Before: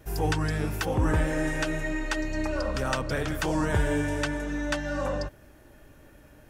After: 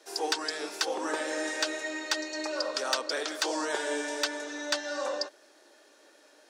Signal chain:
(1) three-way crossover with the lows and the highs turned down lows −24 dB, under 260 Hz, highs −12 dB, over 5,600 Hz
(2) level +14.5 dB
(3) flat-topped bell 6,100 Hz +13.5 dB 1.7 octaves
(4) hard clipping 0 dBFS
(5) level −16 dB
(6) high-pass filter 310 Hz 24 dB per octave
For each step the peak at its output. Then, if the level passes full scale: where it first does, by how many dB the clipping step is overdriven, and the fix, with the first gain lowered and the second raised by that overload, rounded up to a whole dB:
−13.5, +1.0, +5.5, 0.0, −16.0, −13.0 dBFS
step 2, 5.5 dB
step 2 +8.5 dB, step 5 −10 dB

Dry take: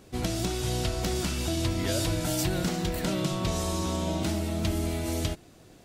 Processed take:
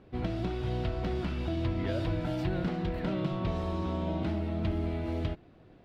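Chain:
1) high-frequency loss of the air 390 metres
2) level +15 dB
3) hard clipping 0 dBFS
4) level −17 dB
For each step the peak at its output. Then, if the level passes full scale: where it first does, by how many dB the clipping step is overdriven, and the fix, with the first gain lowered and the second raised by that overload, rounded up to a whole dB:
−17.0, −2.0, −2.0, −19.0 dBFS
no step passes full scale

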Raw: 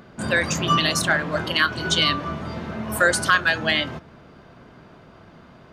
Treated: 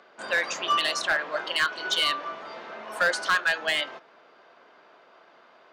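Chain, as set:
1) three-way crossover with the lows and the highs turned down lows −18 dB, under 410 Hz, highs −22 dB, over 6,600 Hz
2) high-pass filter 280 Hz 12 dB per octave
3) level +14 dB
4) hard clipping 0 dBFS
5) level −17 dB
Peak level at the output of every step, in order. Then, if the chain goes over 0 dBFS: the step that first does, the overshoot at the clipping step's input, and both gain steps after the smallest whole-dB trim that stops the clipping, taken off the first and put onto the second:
−4.5, −4.5, +9.5, 0.0, −17.0 dBFS
step 3, 9.5 dB
step 3 +4 dB, step 5 −7 dB

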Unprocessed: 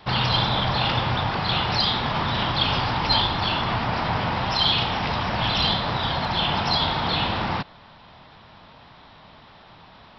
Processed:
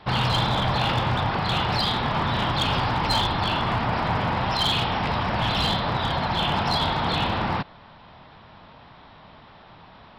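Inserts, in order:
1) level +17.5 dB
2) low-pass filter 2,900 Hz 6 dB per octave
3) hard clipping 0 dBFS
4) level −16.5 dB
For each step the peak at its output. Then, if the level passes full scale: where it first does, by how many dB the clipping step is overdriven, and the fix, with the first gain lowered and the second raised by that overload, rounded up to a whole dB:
+10.5, +7.5, 0.0, −16.5 dBFS
step 1, 7.5 dB
step 1 +9.5 dB, step 4 −8.5 dB

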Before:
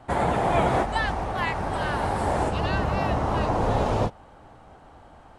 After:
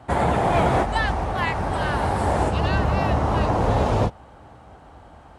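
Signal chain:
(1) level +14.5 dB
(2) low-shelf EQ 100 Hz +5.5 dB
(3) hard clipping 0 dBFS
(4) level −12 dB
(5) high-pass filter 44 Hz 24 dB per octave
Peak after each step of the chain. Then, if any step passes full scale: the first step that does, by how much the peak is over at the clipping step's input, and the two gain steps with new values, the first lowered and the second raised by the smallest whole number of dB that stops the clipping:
+4.5, +5.5, 0.0, −12.0, −8.0 dBFS
step 1, 5.5 dB
step 1 +8.5 dB, step 4 −6 dB

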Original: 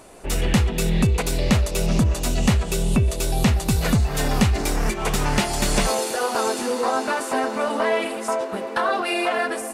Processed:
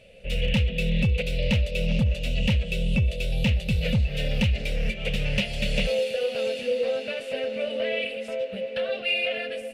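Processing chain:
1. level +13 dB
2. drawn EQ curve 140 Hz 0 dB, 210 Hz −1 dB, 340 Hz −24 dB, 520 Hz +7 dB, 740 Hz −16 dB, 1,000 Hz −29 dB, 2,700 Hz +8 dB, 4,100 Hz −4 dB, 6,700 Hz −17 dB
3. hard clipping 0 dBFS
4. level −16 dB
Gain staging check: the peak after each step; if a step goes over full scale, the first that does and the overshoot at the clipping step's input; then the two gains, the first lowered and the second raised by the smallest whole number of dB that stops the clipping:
+5.0, +7.5, 0.0, −16.0 dBFS
step 1, 7.5 dB
step 1 +5 dB, step 4 −8 dB

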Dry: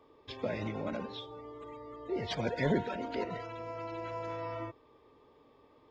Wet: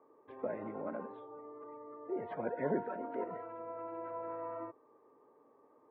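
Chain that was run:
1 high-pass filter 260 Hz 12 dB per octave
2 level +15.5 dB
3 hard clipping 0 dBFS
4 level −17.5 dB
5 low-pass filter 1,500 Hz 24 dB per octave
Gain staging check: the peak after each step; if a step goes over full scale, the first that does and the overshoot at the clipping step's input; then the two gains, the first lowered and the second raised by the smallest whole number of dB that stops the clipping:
−19.5, −4.0, −4.0, −21.5, −21.5 dBFS
no step passes full scale

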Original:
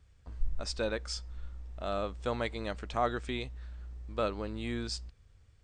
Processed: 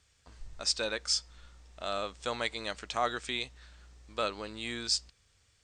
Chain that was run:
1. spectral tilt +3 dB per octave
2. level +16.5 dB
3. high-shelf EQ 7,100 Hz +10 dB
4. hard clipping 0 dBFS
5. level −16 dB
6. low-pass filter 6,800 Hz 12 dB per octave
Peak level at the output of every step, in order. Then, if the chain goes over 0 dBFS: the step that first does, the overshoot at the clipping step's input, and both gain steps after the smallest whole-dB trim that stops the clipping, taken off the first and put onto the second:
−16.0, +0.5, +4.0, 0.0, −16.0, −16.0 dBFS
step 2, 4.0 dB
step 2 +12.5 dB, step 5 −12 dB

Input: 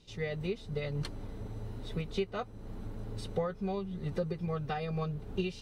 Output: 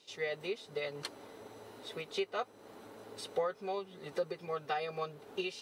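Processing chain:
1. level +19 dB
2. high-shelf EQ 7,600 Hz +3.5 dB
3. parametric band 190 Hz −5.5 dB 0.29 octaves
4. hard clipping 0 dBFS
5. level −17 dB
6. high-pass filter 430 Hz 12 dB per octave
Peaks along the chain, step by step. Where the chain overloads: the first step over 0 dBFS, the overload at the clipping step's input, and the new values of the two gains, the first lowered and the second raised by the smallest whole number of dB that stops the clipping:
−1.5, −1.5, −2.5, −2.5, −19.5, −22.5 dBFS
no step passes full scale

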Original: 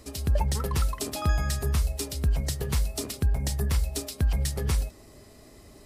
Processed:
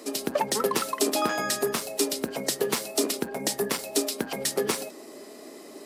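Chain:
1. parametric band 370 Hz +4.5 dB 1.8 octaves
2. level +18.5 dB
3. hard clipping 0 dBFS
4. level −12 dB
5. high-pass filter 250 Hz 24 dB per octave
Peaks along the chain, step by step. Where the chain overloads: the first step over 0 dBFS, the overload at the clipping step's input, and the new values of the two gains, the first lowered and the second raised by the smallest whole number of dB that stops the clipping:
−13.5, +5.0, 0.0, −12.0, −9.0 dBFS
step 2, 5.0 dB
step 2 +13.5 dB, step 4 −7 dB

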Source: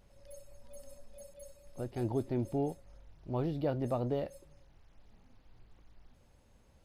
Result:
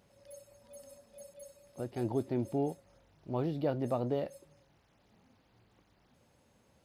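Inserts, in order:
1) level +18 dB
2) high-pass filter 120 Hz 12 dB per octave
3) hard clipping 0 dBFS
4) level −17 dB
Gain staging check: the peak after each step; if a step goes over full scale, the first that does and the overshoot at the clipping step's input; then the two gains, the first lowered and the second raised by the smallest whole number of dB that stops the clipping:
−3.0, −2.5, −2.5, −19.5 dBFS
no step passes full scale

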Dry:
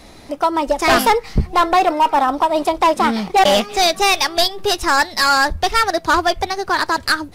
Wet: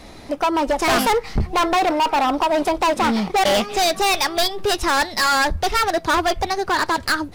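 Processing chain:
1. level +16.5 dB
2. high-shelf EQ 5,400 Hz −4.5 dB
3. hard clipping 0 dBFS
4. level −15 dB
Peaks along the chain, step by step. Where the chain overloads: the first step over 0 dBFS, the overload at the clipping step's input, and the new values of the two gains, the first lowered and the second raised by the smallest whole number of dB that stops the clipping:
+8.5, +8.5, 0.0, −15.0 dBFS
step 1, 8.5 dB
step 1 +7.5 dB, step 4 −6 dB

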